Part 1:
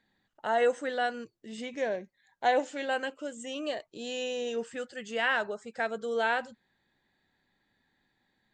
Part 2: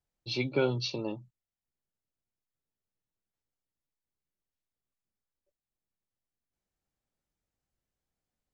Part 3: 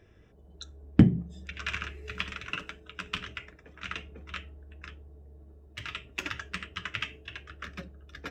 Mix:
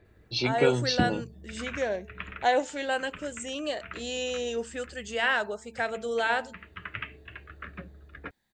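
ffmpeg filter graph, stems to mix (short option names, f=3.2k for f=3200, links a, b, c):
-filter_complex "[0:a]bandreject=f=223:t=h:w=4,bandreject=f=446:t=h:w=4,bandreject=f=669:t=h:w=4,bandreject=f=892:t=h:w=4,dynaudnorm=f=110:g=11:m=6dB,volume=-4.5dB,asplit=2[a][b];[1:a]adelay=50,volume=3dB[c];[2:a]lowpass=f=2.3k:w=0.5412,lowpass=f=2.3k:w=1.3066,volume=0dB[d];[b]apad=whole_len=366395[e];[d][e]sidechaincompress=threshold=-33dB:ratio=8:attack=11:release=616[f];[a][c][f]amix=inputs=3:normalize=0,highshelf=f=5.1k:g=7"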